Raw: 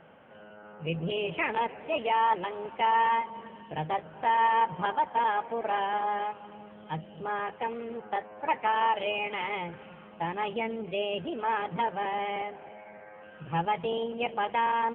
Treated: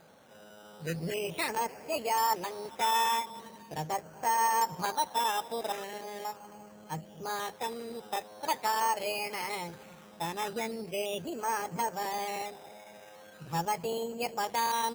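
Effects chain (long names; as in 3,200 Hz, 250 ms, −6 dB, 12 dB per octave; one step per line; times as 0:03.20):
0:05.72–0:06.25: flat-topped bell 1,100 Hz −13.5 dB 1.3 octaves
sample-and-hold swept by an LFO 8×, swing 60% 0.41 Hz
level −3 dB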